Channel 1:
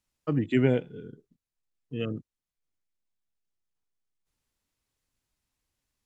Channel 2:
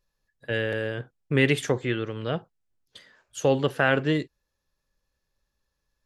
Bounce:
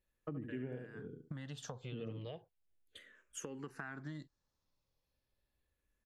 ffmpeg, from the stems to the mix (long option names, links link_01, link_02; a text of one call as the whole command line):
ffmpeg -i stem1.wav -i stem2.wav -filter_complex "[0:a]lowpass=frequency=1100:poles=1,volume=-4dB,asplit=2[link_01][link_02];[link_02]volume=-6.5dB[link_03];[1:a]acompressor=threshold=-30dB:ratio=6,asplit=2[link_04][link_05];[link_05]afreqshift=-0.35[link_06];[link_04][link_06]amix=inputs=2:normalize=1,volume=-5dB[link_07];[link_03]aecho=0:1:71|142|213:1|0.21|0.0441[link_08];[link_01][link_07][link_08]amix=inputs=3:normalize=0,acompressor=threshold=-41dB:ratio=6" out.wav